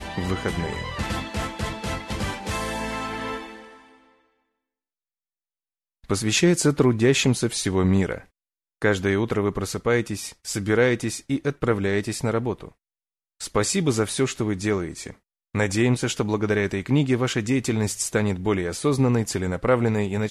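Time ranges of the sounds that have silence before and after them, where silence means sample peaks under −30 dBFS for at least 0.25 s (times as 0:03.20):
0:06.10–0:08.18
0:08.82–0:12.65
0:13.41–0:15.10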